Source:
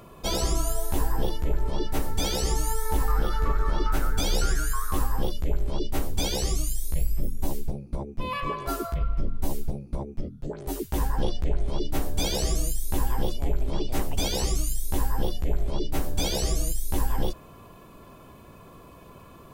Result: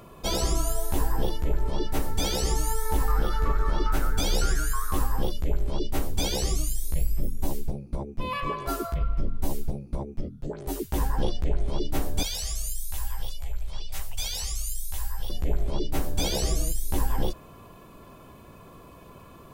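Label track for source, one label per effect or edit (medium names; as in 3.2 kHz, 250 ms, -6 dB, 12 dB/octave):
12.230000	15.300000	amplifier tone stack bass-middle-treble 10-0-10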